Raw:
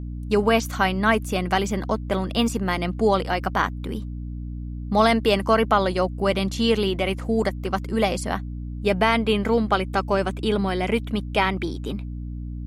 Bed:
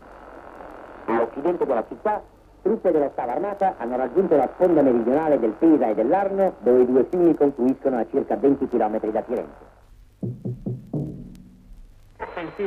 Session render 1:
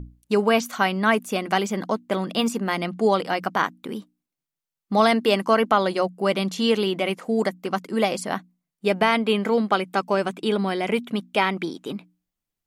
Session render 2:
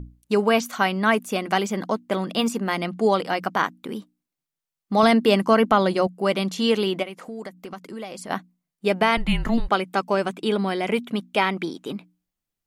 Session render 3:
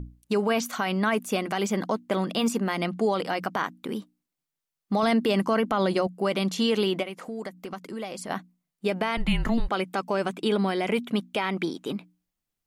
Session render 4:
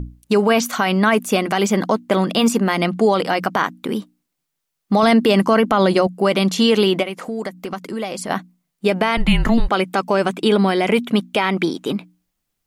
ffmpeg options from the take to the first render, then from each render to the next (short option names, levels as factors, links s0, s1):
-af "bandreject=f=60:t=h:w=6,bandreject=f=120:t=h:w=6,bandreject=f=180:t=h:w=6,bandreject=f=240:t=h:w=6,bandreject=f=300:t=h:w=6"
-filter_complex "[0:a]asettb=1/sr,asplit=3[s0][s1][s2];[s0]atrim=end=5.034[s3];[s1]atrim=start=5.03:end=6.07,asetpts=PTS-STARTPTS,afade=t=in:d=0.004:c=qsin,afade=t=out:st=1.036:d=0.004:c=qsin,lowshelf=f=190:g=11[s4];[s2]atrim=start=6.066[s5];[s3][s4]acrossfade=d=0.004:c1=hsin:c2=qsin[s6];[s6][s5]acrossfade=d=0.004:c1=qsin:c2=hsin,asplit=3[s7][s8][s9];[s7]afade=t=out:st=7.02:d=0.02[s10];[s8]acompressor=threshold=0.0178:ratio=3:attack=3.2:release=140:knee=1:detection=peak,afade=t=in:st=7.02:d=0.02,afade=t=out:st=8.29:d=0.02[s11];[s9]afade=t=in:st=8.29:d=0.02[s12];[s10][s11][s12]amix=inputs=3:normalize=0,asettb=1/sr,asplit=3[s13][s14][s15];[s13]atrim=end=9.174[s16];[s14]atrim=start=9.17:end=9.69,asetpts=PTS-STARTPTS,afade=t=in:d=0.004:c=qsin,afade=t=out:st=0.516:d=0.004:c=qsin,afreqshift=-240[s17];[s15]atrim=start=9.686[s18];[s16][s17]acrossfade=d=0.004:c1=hsin:c2=qsin[s19];[s19][s18]acrossfade=d=0.004:c1=qsin:c2=hsin"
-af "alimiter=limit=0.178:level=0:latency=1:release=56"
-af "volume=2.82"